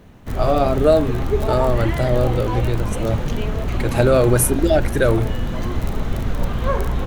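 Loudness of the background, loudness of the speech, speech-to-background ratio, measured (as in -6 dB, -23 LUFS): -24.5 LUFS, -19.5 LUFS, 5.0 dB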